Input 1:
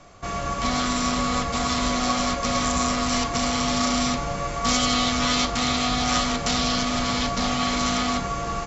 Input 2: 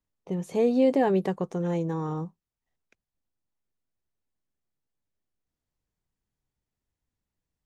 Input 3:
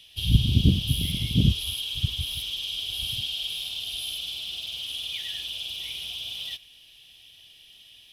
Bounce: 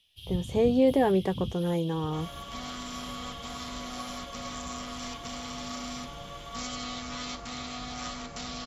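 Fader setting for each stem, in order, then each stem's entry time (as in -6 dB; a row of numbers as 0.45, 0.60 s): -15.0, -0.5, -16.5 dB; 1.90, 0.00, 0.00 s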